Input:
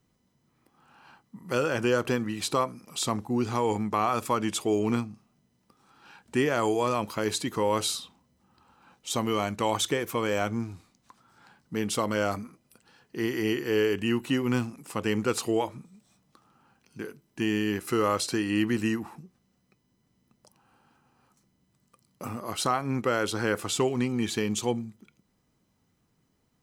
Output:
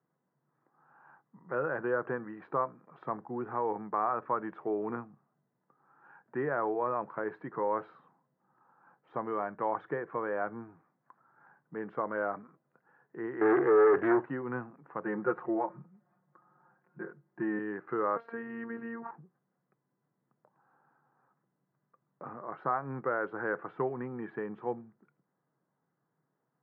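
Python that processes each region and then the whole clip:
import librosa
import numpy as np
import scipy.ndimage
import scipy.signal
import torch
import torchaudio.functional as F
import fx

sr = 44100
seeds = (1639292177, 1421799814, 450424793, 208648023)

y = fx.chain(x, sr, fx.comb(ms=2.5, depth=0.7),
    fx.leveller(passes=3),
    fx.doppler_dist(depth_ms=0.28), at=(13.41, 14.25))
y = fx.chain(y, sr, fx.lowpass(hz=2300.0, slope=12),
    fx.comb(ms=5.6, depth=0.99), at=(15.04, 17.59))
y = fx.chain(y, sr, fx.robotise(hz=231.0),
    fx.env_flatten(amount_pct=50), at=(18.16, 19.11))
y = scipy.signal.sosfilt(scipy.signal.cheby1(4, 1.0, [140.0, 1700.0], 'bandpass', fs=sr, output='sos'), y)
y = fx.peak_eq(y, sr, hz=230.0, db=-10.5, octaves=0.9)
y = y * librosa.db_to_amplitude(-3.0)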